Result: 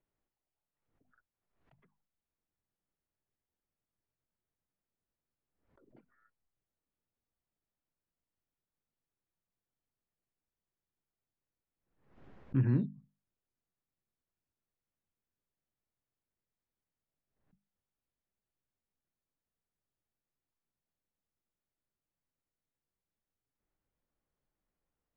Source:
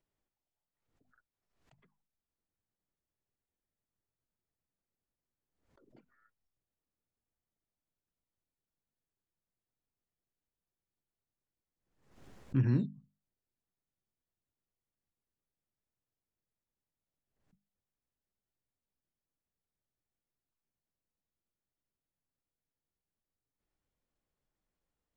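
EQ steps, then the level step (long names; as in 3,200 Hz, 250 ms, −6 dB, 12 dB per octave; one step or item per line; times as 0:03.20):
low-pass filter 2,300 Hz 12 dB per octave
mains-hum notches 50/100 Hz
0.0 dB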